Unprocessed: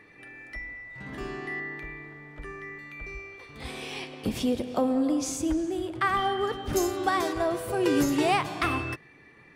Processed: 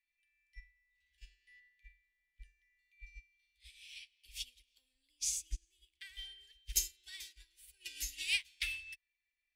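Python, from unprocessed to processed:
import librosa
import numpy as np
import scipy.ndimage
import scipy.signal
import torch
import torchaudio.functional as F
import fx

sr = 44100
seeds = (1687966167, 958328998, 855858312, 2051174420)

y = scipy.signal.sosfilt(scipy.signal.cheby2(4, 40, [100.0, 1300.0], 'bandstop', fs=sr, output='sos'), x)
y = fx.upward_expand(y, sr, threshold_db=-50.0, expansion=2.5)
y = F.gain(torch.from_numpy(y), 4.0).numpy()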